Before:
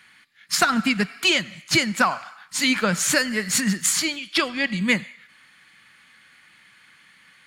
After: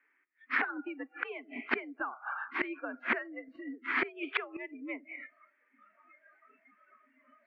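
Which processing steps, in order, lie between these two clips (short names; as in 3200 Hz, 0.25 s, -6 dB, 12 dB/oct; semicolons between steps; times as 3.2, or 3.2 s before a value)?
mistuned SSB +79 Hz 190–2100 Hz; flipped gate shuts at -24 dBFS, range -25 dB; spectral noise reduction 25 dB; gain +8 dB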